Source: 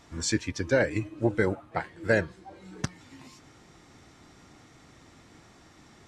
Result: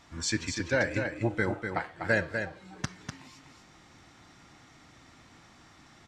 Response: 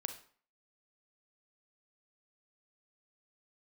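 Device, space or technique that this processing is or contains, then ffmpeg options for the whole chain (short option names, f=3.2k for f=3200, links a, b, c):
filtered reverb send: -filter_complex "[0:a]asplit=2[a][b];[b]highpass=f=410:w=0.5412,highpass=f=410:w=1.3066,lowpass=6.9k[c];[1:a]atrim=start_sample=2205[d];[c][d]afir=irnorm=-1:irlink=0,volume=-4dB[e];[a][e]amix=inputs=2:normalize=0,aecho=1:1:247:0.473,volume=-3.5dB"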